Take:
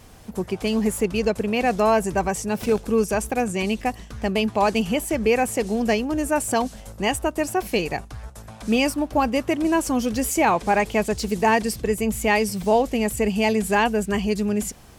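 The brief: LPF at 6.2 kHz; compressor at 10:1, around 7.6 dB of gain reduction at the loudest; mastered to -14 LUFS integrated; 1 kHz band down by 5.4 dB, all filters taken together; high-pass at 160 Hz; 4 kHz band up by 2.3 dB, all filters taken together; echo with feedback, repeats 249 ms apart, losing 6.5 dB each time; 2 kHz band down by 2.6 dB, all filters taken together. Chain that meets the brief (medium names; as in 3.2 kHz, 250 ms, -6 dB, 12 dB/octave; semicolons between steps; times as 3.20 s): high-pass 160 Hz; low-pass 6.2 kHz; peaking EQ 1 kHz -7 dB; peaking EQ 2 kHz -3.5 dB; peaking EQ 4 kHz +6.5 dB; compression 10:1, threshold -24 dBFS; feedback delay 249 ms, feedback 47%, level -6.5 dB; trim +14.5 dB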